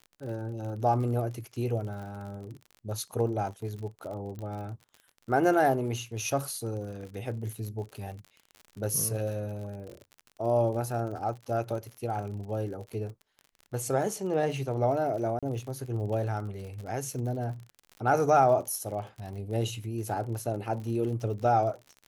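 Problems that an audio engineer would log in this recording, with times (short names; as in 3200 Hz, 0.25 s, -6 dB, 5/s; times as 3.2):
crackle 49/s -38 dBFS
4.39 pop
15.39–15.43 gap 36 ms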